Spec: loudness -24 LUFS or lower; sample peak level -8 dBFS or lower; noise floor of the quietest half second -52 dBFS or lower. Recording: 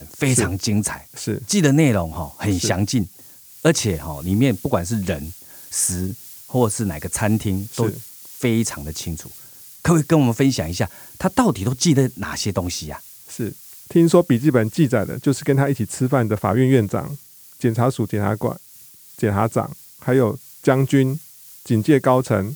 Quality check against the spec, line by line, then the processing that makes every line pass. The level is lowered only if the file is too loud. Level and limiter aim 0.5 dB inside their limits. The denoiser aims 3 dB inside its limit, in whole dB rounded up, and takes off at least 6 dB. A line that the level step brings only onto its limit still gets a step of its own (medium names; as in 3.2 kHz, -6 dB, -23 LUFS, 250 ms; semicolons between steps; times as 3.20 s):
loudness -20.0 LUFS: fail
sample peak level -2.0 dBFS: fail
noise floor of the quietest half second -45 dBFS: fail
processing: noise reduction 6 dB, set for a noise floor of -45 dBFS; trim -4.5 dB; peak limiter -8.5 dBFS